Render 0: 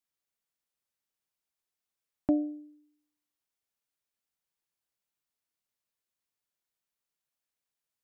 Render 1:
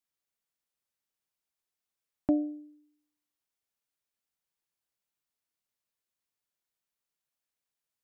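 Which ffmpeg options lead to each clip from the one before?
-af anull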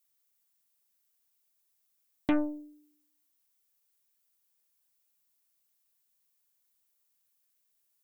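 -af "aeval=exprs='0.158*(cos(1*acos(clip(val(0)/0.158,-1,1)))-cos(1*PI/2))+0.0178*(cos(3*acos(clip(val(0)/0.158,-1,1)))-cos(3*PI/2))+0.0158*(cos(5*acos(clip(val(0)/0.158,-1,1)))-cos(5*PI/2))+0.0224*(cos(8*acos(clip(val(0)/0.158,-1,1)))-cos(8*PI/2))':c=same,aemphasis=mode=production:type=50kf"

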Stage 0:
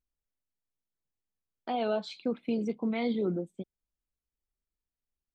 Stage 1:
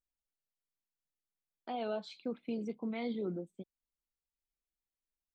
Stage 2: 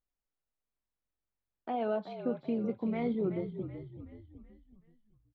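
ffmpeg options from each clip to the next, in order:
-af "equalizer=f=68:w=1.5:g=-4,volume=-7dB"
-filter_complex "[0:a]asplit=6[a][b][c][d][e][f];[b]adelay=377,afreqshift=-46,volume=-9.5dB[g];[c]adelay=754,afreqshift=-92,volume=-16.2dB[h];[d]adelay=1131,afreqshift=-138,volume=-23dB[i];[e]adelay=1508,afreqshift=-184,volume=-29.7dB[j];[f]adelay=1885,afreqshift=-230,volume=-36.5dB[k];[a][g][h][i][j][k]amix=inputs=6:normalize=0,asplit=2[l][m];[m]adynamicsmooth=sensitivity=7.5:basefreq=1.6k,volume=-2dB[n];[l][n]amix=inputs=2:normalize=0,lowpass=2.6k"

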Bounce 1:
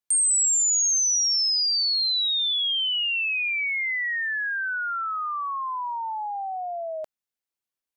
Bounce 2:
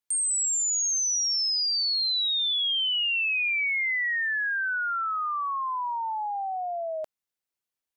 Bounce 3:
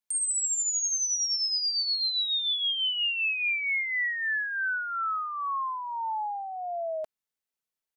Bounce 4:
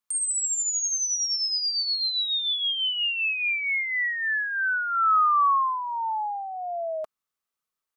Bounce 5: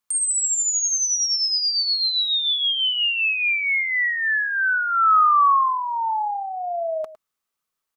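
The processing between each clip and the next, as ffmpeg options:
-af "alimiter=limit=-23dB:level=0:latency=1"
-af "aecho=1:1:4.6:0.32,volume=-2.5dB"
-af "equalizer=f=1.2k:w=4.8:g=12.5,volume=1.5dB"
-af "aecho=1:1:106:0.168,volume=4.5dB"

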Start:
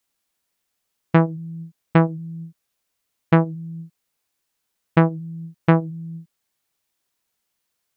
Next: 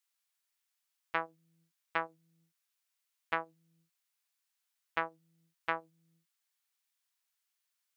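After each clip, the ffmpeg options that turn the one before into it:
-af "highpass=1.1k,volume=-7dB"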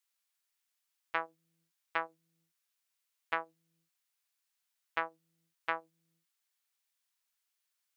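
-af "equalizer=f=100:t=o:w=2.4:g=-11.5"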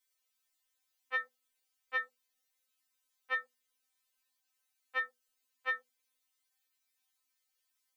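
-af "afftfilt=real='re*3.46*eq(mod(b,12),0)':imag='im*3.46*eq(mod(b,12),0)':win_size=2048:overlap=0.75,volume=4dB"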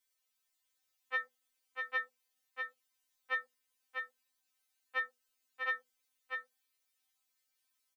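-af "aecho=1:1:646:0.562,volume=-1dB"

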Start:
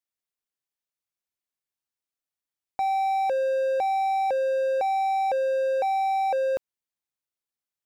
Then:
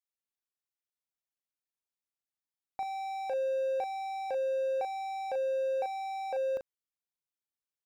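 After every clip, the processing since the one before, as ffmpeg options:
-filter_complex "[0:a]asplit=2[a][b];[b]adelay=38,volume=-7dB[c];[a][c]amix=inputs=2:normalize=0,volume=-8.5dB"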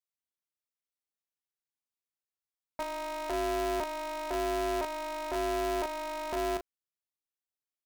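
-af "aeval=exprs='val(0)*sgn(sin(2*PI*160*n/s))':c=same"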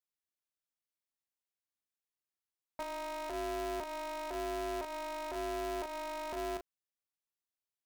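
-af "alimiter=level_in=5.5dB:limit=-24dB:level=0:latency=1:release=97,volume=-5.5dB,volume=-3.5dB"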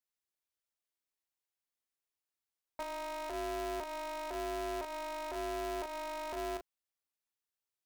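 -af "equalizer=f=170:w=1.9:g=-9"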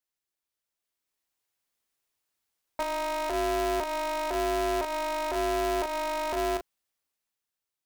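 -af "dynaudnorm=f=250:g=9:m=7.5dB,volume=2.5dB"

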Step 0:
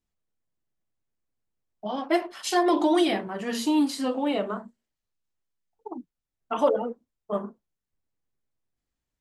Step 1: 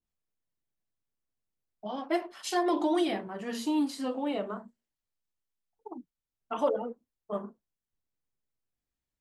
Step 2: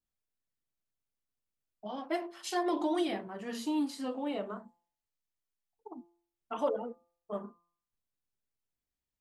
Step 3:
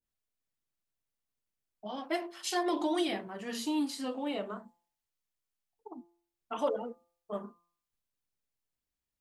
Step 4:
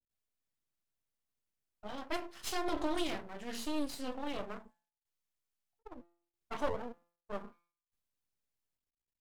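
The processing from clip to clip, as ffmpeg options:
-af "adynamicequalizer=threshold=0.0126:dfrequency=1500:dqfactor=0.7:tfrequency=1500:tqfactor=0.7:attack=5:release=100:ratio=0.375:range=1.5:mode=cutabove:tftype=highshelf,volume=-5.5dB"
-af "bandreject=f=171.8:t=h:w=4,bandreject=f=343.6:t=h:w=4,bandreject=f=515.4:t=h:w=4,bandreject=f=687.2:t=h:w=4,bandreject=f=859:t=h:w=4,bandreject=f=1.0308k:t=h:w=4,bandreject=f=1.2026k:t=h:w=4,volume=-3.5dB"
-af "adynamicequalizer=threshold=0.00316:dfrequency=1800:dqfactor=0.7:tfrequency=1800:tqfactor=0.7:attack=5:release=100:ratio=0.375:range=2.5:mode=boostabove:tftype=highshelf"
-af "aeval=exprs='max(val(0),0)':c=same"

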